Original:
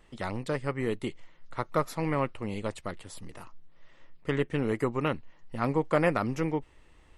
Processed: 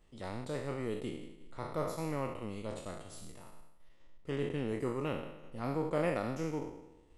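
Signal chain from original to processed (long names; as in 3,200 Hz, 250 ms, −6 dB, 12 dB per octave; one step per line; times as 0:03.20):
peak hold with a decay on every bin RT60 1.04 s
parametric band 1,600 Hz −7 dB 1.6 octaves
transient designer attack −3 dB, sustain −7 dB
level −7 dB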